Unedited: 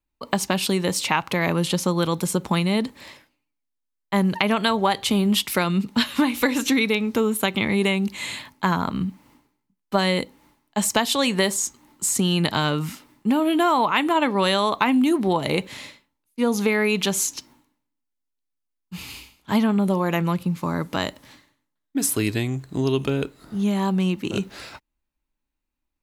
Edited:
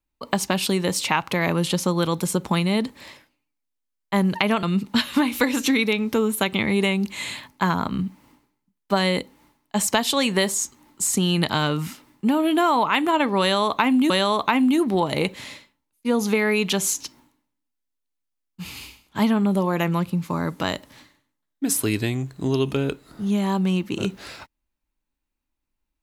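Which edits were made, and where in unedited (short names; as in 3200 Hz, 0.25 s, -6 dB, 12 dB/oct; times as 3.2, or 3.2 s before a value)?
4.63–5.65 cut
14.43–15.12 loop, 2 plays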